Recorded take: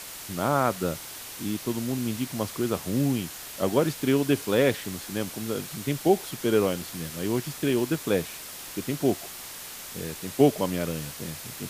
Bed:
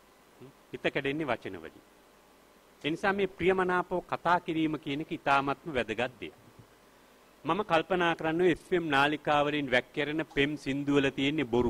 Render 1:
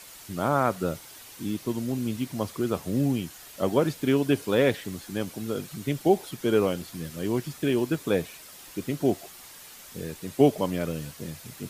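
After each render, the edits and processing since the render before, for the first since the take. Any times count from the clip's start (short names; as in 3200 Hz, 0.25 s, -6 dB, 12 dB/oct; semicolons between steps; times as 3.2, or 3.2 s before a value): denoiser 8 dB, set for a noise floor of -40 dBFS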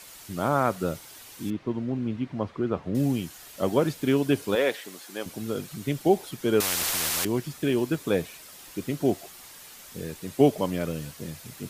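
1.5–2.95 LPF 2200 Hz; 4.55–5.26 HPF 420 Hz; 6.6–7.25 spectral compressor 10:1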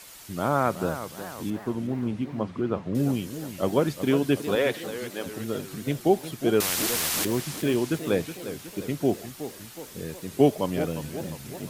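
warbling echo 0.362 s, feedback 53%, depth 214 cents, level -11.5 dB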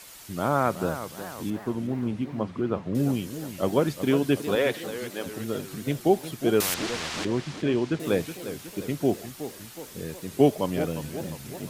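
6.74–8 air absorption 120 m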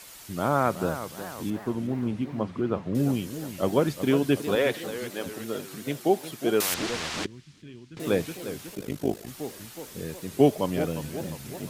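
5.33–6.71 HPF 260 Hz 6 dB/oct; 7.26–7.97 passive tone stack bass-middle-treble 6-0-2; 8.75–9.28 AM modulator 52 Hz, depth 75%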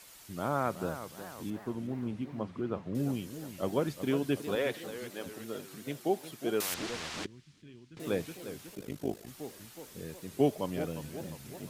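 gain -7.5 dB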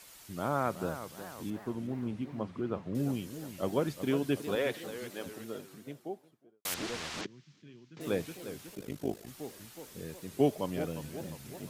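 5.2–6.65 studio fade out; 7.21–8.01 Chebyshev band-pass 130–6500 Hz, order 3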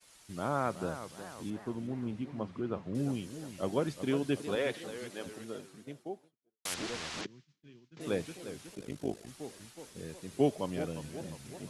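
expander -49 dBFS; elliptic low-pass 11000 Hz, stop band 70 dB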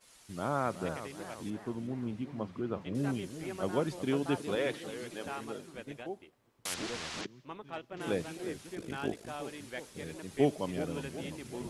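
add bed -16 dB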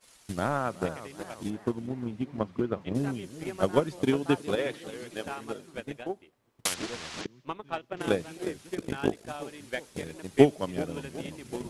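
transient shaper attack +12 dB, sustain -1 dB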